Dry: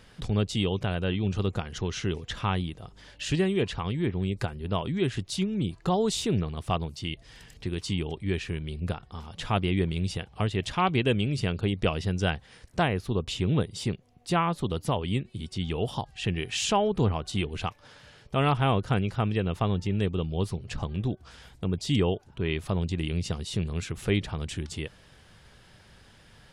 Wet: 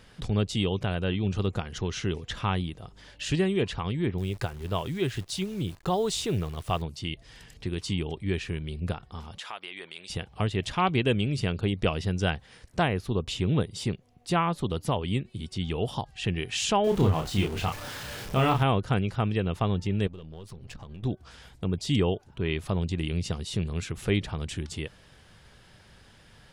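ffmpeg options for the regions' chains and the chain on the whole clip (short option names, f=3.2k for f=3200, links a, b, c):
-filter_complex "[0:a]asettb=1/sr,asplit=3[a][b][c];[a]atrim=end=4.184[d];[b]atrim=start=4.18:end=6.82,asetpts=PTS-STARTPTS,afade=t=in:d=0.004:c=qsin,afade=t=out:st=2.636:d=0.004:c=qsin,equalizer=f=220:w=2.2:g=-6,acrusher=bits=9:dc=4:mix=0:aa=0.000001[e];[c]atrim=start=6.816[f];[d][e]acrossfade=d=0.004:c1=hsin:c2=qsin[g];[g][f]acrossfade=d=0.004:c1=qsin:c2=hsin,asettb=1/sr,asplit=3[h][i][j];[h]atrim=end=9.384[k];[i]atrim=start=9.38:end=10.1,asetpts=PTS-STARTPTS,afade=t=in:d=0.004:c=qsin,afade=t=out:st=0.716:d=0.004:c=qsin,highpass=850,acompressor=threshold=-35dB:ratio=3:attack=3.2:release=140:knee=1:detection=peak[l];[j]atrim=start=10.096[m];[k][l]acrossfade=d=0.004:c1=hsin:c2=qsin[n];[n][m]acrossfade=d=0.004:c1=qsin:c2=hsin,asettb=1/sr,asplit=3[o][p][q];[o]atrim=end=16.844[r];[p]atrim=start=16.84:end=18.63,asetpts=PTS-STARTPTS,afade=t=in:d=0.004:c=qsin,afade=t=out:st=1.786:d=0.004:c=qsin,aeval=exprs='val(0)+0.5*0.0178*sgn(val(0))':c=same,deesser=0.75,asplit=2[s][t];[t]adelay=31,volume=-4dB[u];[s][u]amix=inputs=2:normalize=0,atrim=end_sample=78939[v];[q]atrim=start=18.626[w];[r][v]acrossfade=d=0.004:c1=hsin:c2=qsin[x];[x][w]acrossfade=d=0.004:c1=qsin:c2=hsin,asettb=1/sr,asplit=3[y][z][aa];[y]atrim=end=20.074[ab];[z]atrim=start=20.07:end=21.03,asetpts=PTS-STARTPTS,afade=t=in:d=0.004:c=qsin,afade=t=out:st=0.956:d=0.004:c=qsin,aeval=exprs='if(lt(val(0),0),0.447*val(0),val(0))':c=same,acompressor=threshold=-38dB:ratio=12:attack=3.2:release=140:knee=1:detection=peak[ac];[aa]atrim=start=21.026[ad];[ab][ac]acrossfade=d=0.004:c1=hsin:c2=qsin[ae];[ae][ad]acrossfade=d=0.004:c1=qsin:c2=hsin"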